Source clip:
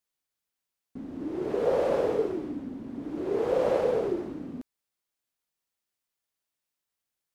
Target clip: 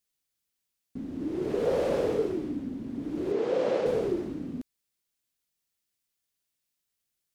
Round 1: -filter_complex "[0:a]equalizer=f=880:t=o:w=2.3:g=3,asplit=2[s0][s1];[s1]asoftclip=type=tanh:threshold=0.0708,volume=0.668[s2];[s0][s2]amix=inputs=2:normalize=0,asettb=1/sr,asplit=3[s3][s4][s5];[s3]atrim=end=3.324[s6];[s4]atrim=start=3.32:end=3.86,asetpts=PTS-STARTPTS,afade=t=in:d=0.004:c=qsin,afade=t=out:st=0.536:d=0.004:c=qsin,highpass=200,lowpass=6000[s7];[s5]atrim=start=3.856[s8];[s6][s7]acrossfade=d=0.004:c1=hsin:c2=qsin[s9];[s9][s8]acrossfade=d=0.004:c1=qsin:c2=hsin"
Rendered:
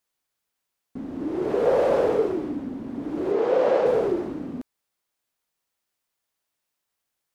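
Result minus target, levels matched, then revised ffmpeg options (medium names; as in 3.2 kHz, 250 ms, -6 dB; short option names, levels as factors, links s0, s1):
1 kHz band +3.5 dB
-filter_complex "[0:a]equalizer=f=880:t=o:w=2.3:g=-8,asplit=2[s0][s1];[s1]asoftclip=type=tanh:threshold=0.0708,volume=0.668[s2];[s0][s2]amix=inputs=2:normalize=0,asettb=1/sr,asplit=3[s3][s4][s5];[s3]atrim=end=3.324[s6];[s4]atrim=start=3.32:end=3.86,asetpts=PTS-STARTPTS,afade=t=in:d=0.004:c=qsin,afade=t=out:st=0.536:d=0.004:c=qsin,highpass=200,lowpass=6000[s7];[s5]atrim=start=3.856[s8];[s6][s7]acrossfade=d=0.004:c1=hsin:c2=qsin[s9];[s9][s8]acrossfade=d=0.004:c1=qsin:c2=hsin"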